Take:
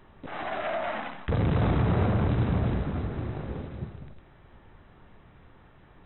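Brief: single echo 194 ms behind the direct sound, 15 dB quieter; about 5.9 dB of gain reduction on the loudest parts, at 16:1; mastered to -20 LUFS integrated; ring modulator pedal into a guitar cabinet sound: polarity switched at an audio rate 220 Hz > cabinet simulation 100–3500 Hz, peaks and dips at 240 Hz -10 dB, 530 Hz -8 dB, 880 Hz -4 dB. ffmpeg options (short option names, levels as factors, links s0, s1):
-af "acompressor=threshold=0.0501:ratio=16,aecho=1:1:194:0.178,aeval=exprs='val(0)*sgn(sin(2*PI*220*n/s))':c=same,highpass=100,equalizer=f=240:t=q:w=4:g=-10,equalizer=f=530:t=q:w=4:g=-8,equalizer=f=880:t=q:w=4:g=-4,lowpass=f=3500:w=0.5412,lowpass=f=3500:w=1.3066,volume=5.62"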